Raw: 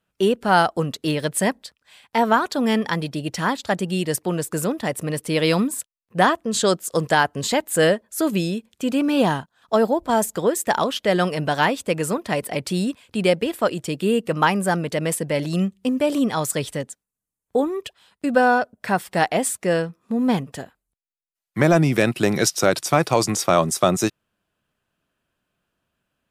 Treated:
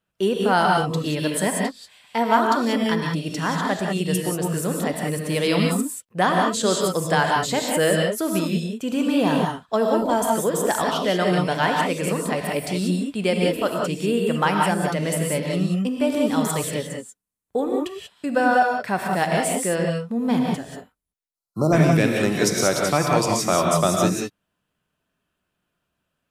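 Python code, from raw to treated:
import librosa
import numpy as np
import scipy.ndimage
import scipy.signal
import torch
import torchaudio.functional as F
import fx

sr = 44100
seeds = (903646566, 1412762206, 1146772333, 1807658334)

y = fx.dmg_crackle(x, sr, seeds[0], per_s=26.0, level_db=-32.0, at=(6.55, 7.18), fade=0.02)
y = fx.rev_gated(y, sr, seeds[1], gate_ms=210, shape='rising', drr_db=0.0)
y = fx.spec_erase(y, sr, start_s=21.29, length_s=0.44, low_hz=1400.0, high_hz=3900.0)
y = F.gain(torch.from_numpy(y), -3.5).numpy()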